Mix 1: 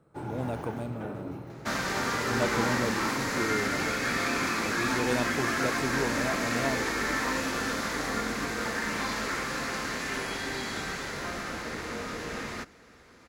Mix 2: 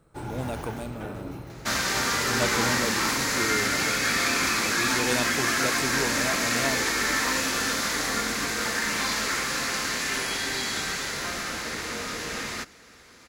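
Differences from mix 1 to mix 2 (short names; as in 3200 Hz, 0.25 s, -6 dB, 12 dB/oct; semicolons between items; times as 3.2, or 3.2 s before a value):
first sound: remove HPF 110 Hz; master: add high shelf 2200 Hz +11 dB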